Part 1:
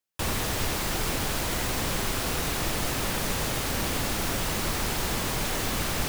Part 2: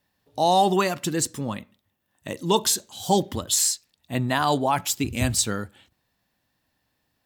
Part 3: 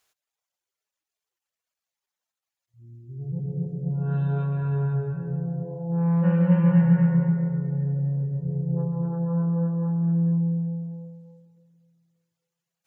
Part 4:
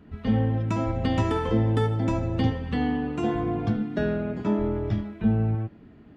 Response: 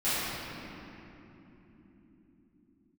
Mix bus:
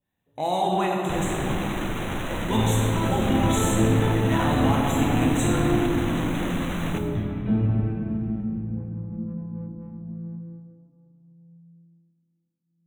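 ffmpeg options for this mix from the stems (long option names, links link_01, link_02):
-filter_complex "[0:a]adelay=900,volume=0dB,asplit=2[link_01][link_02];[link_02]volume=-22.5dB[link_03];[1:a]volume=-6.5dB,asplit=2[link_04][link_05];[link_05]volume=-11dB[link_06];[2:a]lowpass=1400,volume=-13.5dB,asplit=2[link_07][link_08];[link_08]volume=-23dB[link_09];[3:a]adelay=2250,volume=-4.5dB,asplit=3[link_10][link_11][link_12];[link_10]atrim=end=5.75,asetpts=PTS-STARTPTS,afade=type=out:start_time=5.746:duration=0.004:curve=hsin[link_13];[link_11]atrim=start=5.75:end=6.94,asetpts=PTS-STARTPTS,volume=0[link_14];[link_12]atrim=start=6.94,asetpts=PTS-STARTPTS,afade=type=in:duration=0.004:curve=hsin[link_15];[link_13][link_14][link_15]concat=n=3:v=0:a=1,asplit=2[link_16][link_17];[link_17]volume=-10dB[link_18];[link_01][link_04][link_07]amix=inputs=3:normalize=0,adynamicsmooth=sensitivity=7:basefreq=560,alimiter=limit=-20.5dB:level=0:latency=1,volume=0dB[link_19];[4:a]atrim=start_sample=2205[link_20];[link_03][link_06][link_09][link_18]amix=inputs=4:normalize=0[link_21];[link_21][link_20]afir=irnorm=-1:irlink=0[link_22];[link_16][link_19][link_22]amix=inputs=3:normalize=0,asuperstop=centerf=4900:order=12:qfactor=2.5"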